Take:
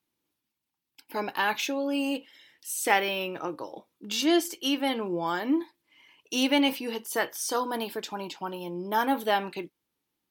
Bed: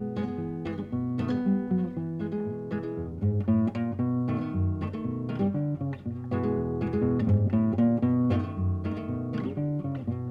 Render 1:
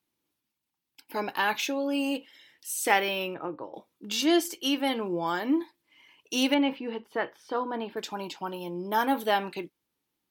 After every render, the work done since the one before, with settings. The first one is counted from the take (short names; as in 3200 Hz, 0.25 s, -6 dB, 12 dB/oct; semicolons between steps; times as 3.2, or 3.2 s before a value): 3.34–3.74 air absorption 490 m; 6.54–7.97 air absorption 410 m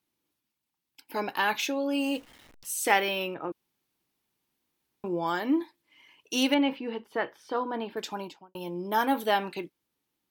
2.01–2.83 level-crossing sampler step -49 dBFS; 3.52–5.04 room tone; 8.13–8.55 studio fade out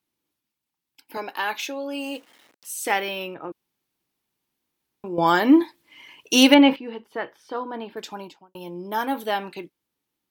1.17–2.71 HPF 300 Hz; 5.18–6.76 gain +11 dB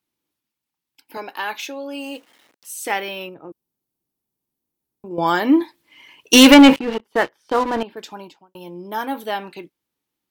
3.29–5.11 bell 2300 Hz -13 dB 2.9 oct; 6.33–7.83 sample leveller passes 3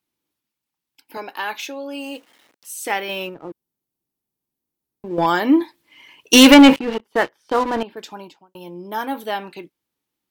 3.09–5.26 sample leveller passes 1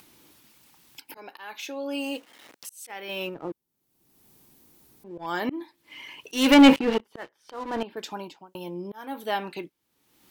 auto swell 0.557 s; upward compressor, threshold -36 dBFS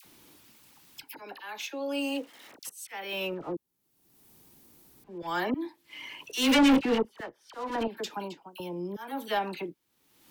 dispersion lows, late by 50 ms, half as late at 1200 Hz; soft clip -17 dBFS, distortion -7 dB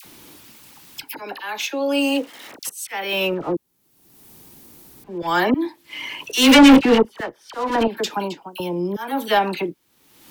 gain +11.5 dB